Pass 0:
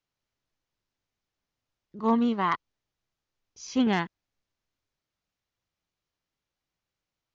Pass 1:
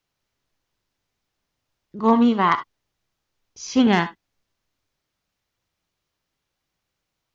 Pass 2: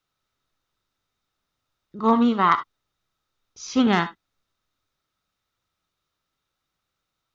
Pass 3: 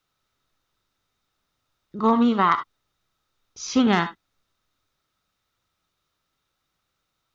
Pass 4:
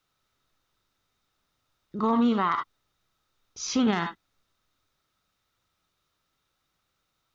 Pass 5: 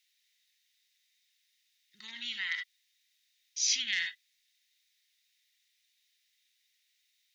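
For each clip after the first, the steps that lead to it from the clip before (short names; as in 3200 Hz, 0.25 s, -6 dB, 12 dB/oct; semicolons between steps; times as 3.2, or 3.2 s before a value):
non-linear reverb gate 90 ms rising, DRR 11.5 dB; gain +7.5 dB
small resonant body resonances 1300/3700 Hz, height 11 dB, ringing for 20 ms; gain -2.5 dB
compressor 2.5:1, threshold -20 dBFS, peak gain reduction 5.5 dB; gain +3.5 dB
limiter -16 dBFS, peak gain reduction 9 dB
elliptic high-pass 1900 Hz, stop band 40 dB; gain +5.5 dB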